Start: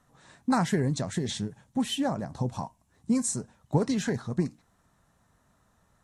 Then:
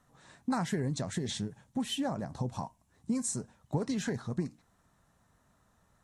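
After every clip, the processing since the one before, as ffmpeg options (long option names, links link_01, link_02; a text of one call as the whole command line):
ffmpeg -i in.wav -af "acompressor=threshold=-29dB:ratio=2,volume=-2dB" out.wav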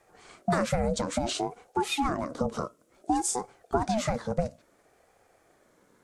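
ffmpeg -i in.wav -af "aeval=exprs='val(0)*sin(2*PI*480*n/s+480*0.3/0.58*sin(2*PI*0.58*n/s))':channel_layout=same,volume=8dB" out.wav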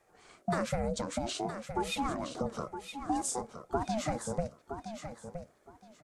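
ffmpeg -i in.wav -af "aecho=1:1:967|1934|2901:0.355|0.0674|0.0128,volume=-5.5dB" out.wav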